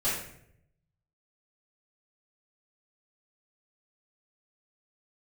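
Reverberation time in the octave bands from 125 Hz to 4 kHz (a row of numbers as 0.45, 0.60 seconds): 1.2, 0.90, 0.80, 0.60, 0.65, 0.50 seconds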